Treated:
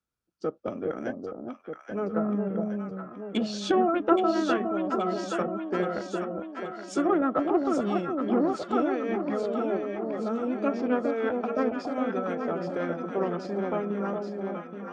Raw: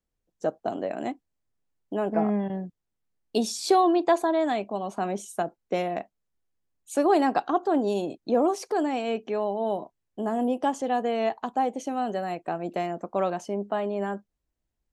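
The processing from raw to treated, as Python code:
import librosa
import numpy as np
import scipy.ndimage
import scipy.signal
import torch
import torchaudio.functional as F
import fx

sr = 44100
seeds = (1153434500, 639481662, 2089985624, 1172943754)

y = fx.cheby_harmonics(x, sr, harmonics=(6,), levels_db=(-29,), full_scale_db=-9.5)
y = scipy.signal.sosfilt(scipy.signal.butter(2, 68.0, 'highpass', fs=sr, output='sos'), y)
y = fx.peak_eq(y, sr, hz=1700.0, db=15.0, octaves=0.23)
y = fx.env_lowpass_down(y, sr, base_hz=1700.0, full_db=-16.5)
y = fx.formant_shift(y, sr, semitones=-4)
y = fx.echo_alternate(y, sr, ms=412, hz=880.0, feedback_pct=76, wet_db=-3.0)
y = y * librosa.db_to_amplitude(-3.0)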